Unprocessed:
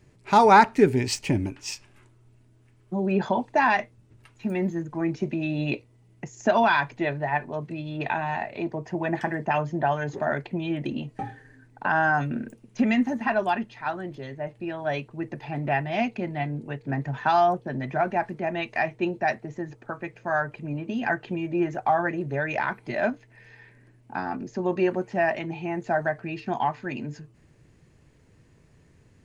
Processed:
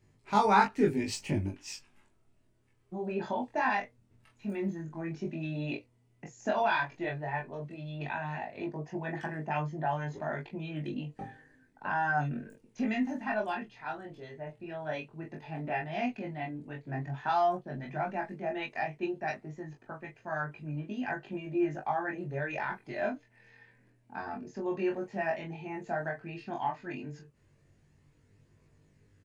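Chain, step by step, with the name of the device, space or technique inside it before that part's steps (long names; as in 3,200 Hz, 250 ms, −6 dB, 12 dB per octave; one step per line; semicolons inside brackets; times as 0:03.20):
double-tracked vocal (double-tracking delay 20 ms −4 dB; chorus effect 0.1 Hz, delay 19 ms, depth 5.8 ms)
level −6.5 dB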